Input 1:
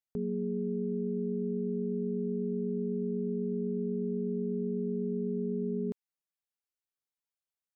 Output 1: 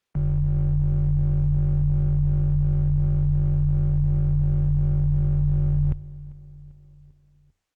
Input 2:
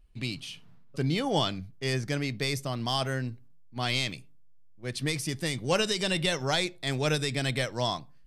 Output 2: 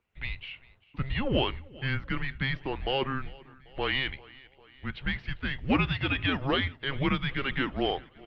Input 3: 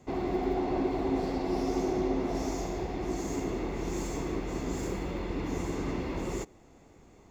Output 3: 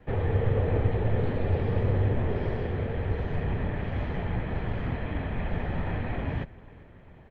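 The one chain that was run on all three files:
in parallel at −5 dB: asymmetric clip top −32 dBFS, bottom −16 dBFS
on the sum: mains-hum notches 60/120/180/240 Hz
repeating echo 395 ms, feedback 58%, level −22 dB
single-sideband voice off tune −270 Hz 210–3,400 Hz
Opus 24 kbit/s 48,000 Hz
normalise the peak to −12 dBFS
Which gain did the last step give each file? +10.0, −1.0, +3.0 decibels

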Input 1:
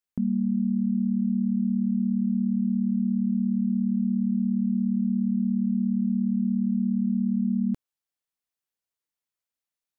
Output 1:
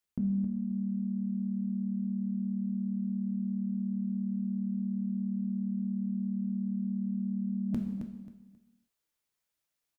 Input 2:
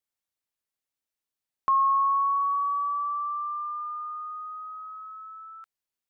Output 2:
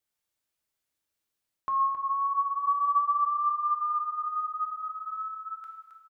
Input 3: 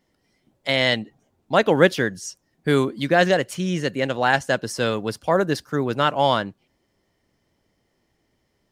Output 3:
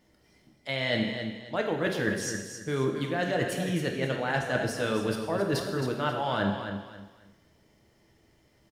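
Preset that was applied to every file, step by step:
reversed playback
downward compressor 10 to 1, threshold −29 dBFS
reversed playback
parametric band 76 Hz +4 dB 0.83 octaves
repeating echo 268 ms, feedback 26%, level −8.5 dB
dynamic equaliser 6,400 Hz, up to −5 dB, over −56 dBFS, Q 0.94
reverb whose tail is shaped and stops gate 350 ms falling, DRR 2.5 dB
level +2.5 dB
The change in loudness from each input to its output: −8.0, −1.5, −8.5 LU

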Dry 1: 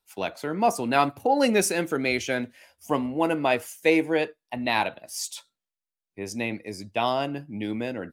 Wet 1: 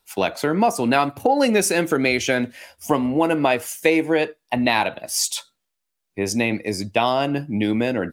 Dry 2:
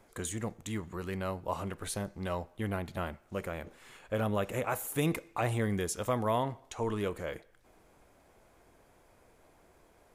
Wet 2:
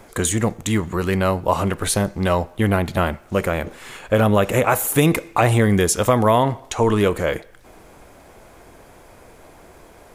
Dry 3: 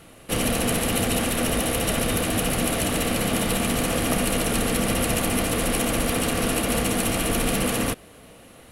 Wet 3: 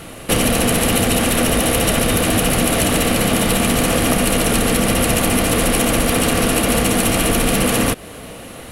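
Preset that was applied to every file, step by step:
downward compressor 3 to 1, threshold −28 dBFS
normalise the peak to −2 dBFS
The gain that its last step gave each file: +11.5, +16.5, +13.5 decibels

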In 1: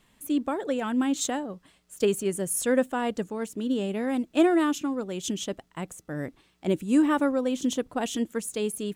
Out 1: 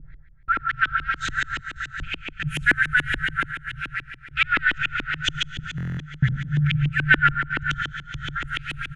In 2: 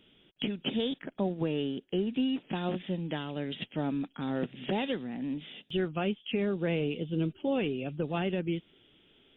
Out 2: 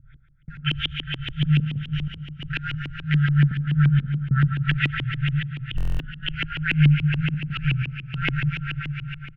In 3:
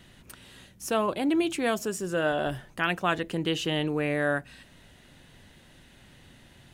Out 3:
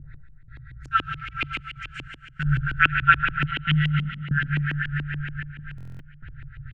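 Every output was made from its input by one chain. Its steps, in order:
adaptive Wiener filter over 15 samples
low-shelf EQ 260 Hz +10.5 dB
comb filter 5.2 ms, depth 42%
feedback delay with all-pass diffusion 498 ms, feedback 45%, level −7.5 dB
brick-wall band-stop 160–1,300 Hz
gate pattern "x..xxxxxxx.x" 94 BPM −60 dB
four-comb reverb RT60 1.8 s, combs from 32 ms, DRR 3.5 dB
auto-filter low-pass saw up 7 Hz 270–3,000 Hz
buffer that repeats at 0:05.76, samples 1,024, times 9
loudness normalisation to −24 LKFS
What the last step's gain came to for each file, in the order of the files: +15.5, +14.0, +7.0 decibels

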